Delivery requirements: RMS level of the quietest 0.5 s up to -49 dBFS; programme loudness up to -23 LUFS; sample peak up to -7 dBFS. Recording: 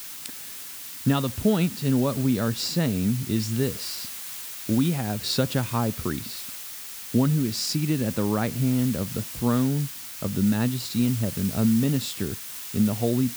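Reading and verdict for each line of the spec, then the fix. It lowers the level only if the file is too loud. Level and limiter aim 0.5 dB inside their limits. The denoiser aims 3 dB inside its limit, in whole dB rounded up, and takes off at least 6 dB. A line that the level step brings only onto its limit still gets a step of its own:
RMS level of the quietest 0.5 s -38 dBFS: fail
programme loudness -25.5 LUFS: OK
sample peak -9.5 dBFS: OK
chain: denoiser 14 dB, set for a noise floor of -38 dBFS

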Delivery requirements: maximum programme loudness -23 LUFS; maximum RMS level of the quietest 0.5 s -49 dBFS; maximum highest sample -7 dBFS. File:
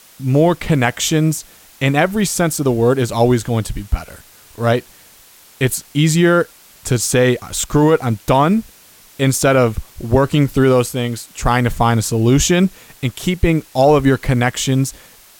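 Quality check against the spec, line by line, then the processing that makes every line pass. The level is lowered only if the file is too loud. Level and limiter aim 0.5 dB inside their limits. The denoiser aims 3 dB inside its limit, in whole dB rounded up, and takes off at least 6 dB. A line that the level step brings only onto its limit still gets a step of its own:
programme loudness -16.0 LUFS: fail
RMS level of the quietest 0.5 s -46 dBFS: fail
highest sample -2.5 dBFS: fail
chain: gain -7.5 dB

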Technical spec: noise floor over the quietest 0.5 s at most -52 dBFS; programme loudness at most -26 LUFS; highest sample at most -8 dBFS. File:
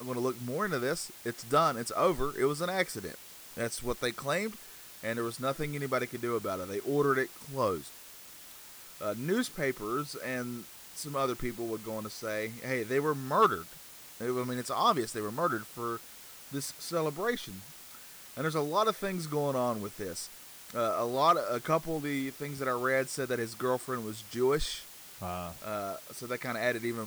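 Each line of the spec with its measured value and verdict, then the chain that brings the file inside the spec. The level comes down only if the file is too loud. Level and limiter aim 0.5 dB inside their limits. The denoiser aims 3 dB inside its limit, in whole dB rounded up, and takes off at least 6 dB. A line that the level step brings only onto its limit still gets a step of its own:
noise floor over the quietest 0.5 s -50 dBFS: fail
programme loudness -32.5 LUFS: OK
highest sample -14.5 dBFS: OK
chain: denoiser 6 dB, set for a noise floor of -50 dBFS

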